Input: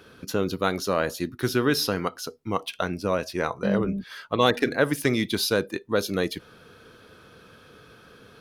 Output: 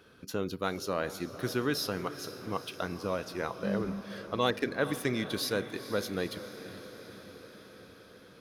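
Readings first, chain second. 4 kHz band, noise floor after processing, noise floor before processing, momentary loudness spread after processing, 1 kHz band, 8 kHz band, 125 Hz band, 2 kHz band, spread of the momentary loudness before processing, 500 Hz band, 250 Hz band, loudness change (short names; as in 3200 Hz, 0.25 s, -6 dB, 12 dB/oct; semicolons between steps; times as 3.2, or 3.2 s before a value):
-7.5 dB, -55 dBFS, -52 dBFS, 18 LU, -7.5 dB, -7.5 dB, -7.5 dB, -7.5 dB, 8 LU, -7.5 dB, -7.5 dB, -8.0 dB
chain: diffused feedback echo 0.462 s, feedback 67%, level -13 dB; gain -8 dB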